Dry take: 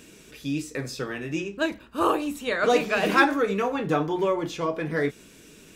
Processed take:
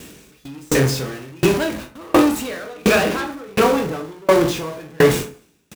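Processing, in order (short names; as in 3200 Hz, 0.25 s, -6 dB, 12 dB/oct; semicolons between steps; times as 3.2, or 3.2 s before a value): zero-crossing step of -22 dBFS; low shelf 320 Hz +5.5 dB; early reflections 23 ms -7 dB, 37 ms -15 dB; sample leveller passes 3; gate with hold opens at -7 dBFS; HPF 42 Hz; on a send at -6.5 dB: reverb RT60 0.65 s, pre-delay 28 ms; on the sum: dB-ramp tremolo decaying 1.4 Hz, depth 32 dB; gain -2.5 dB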